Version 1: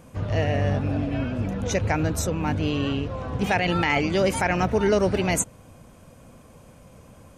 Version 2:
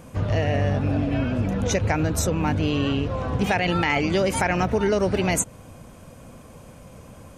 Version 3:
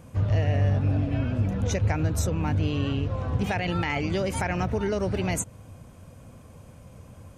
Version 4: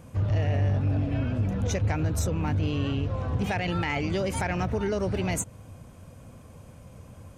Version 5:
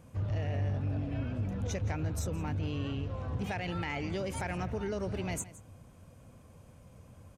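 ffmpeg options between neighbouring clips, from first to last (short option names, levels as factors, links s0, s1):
-af "acompressor=threshold=0.0708:ratio=4,volume=1.68"
-af "equalizer=f=92:w=1.1:g=8.5,volume=0.473"
-af "asoftclip=type=tanh:threshold=0.133"
-af "aecho=1:1:167:0.133,volume=0.422"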